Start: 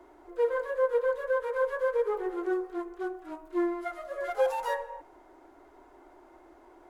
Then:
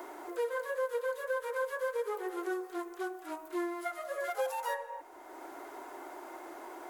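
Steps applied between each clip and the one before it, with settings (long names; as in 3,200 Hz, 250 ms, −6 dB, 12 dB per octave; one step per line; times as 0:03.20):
RIAA equalisation recording
multiband upward and downward compressor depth 70%
level −3.5 dB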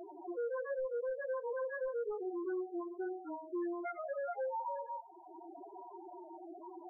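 gain into a clipping stage and back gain 36 dB
spectral peaks only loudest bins 4
level +2 dB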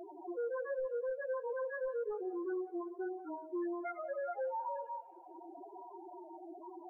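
tape delay 182 ms, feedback 64%, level −20 dB, low-pass 2,000 Hz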